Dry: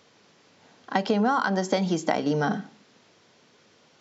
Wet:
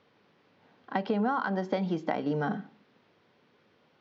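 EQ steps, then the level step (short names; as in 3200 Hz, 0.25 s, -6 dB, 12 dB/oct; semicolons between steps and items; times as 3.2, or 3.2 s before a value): LPF 6200 Hz 12 dB/oct; air absorption 240 m; notch 660 Hz, Q 22; -4.5 dB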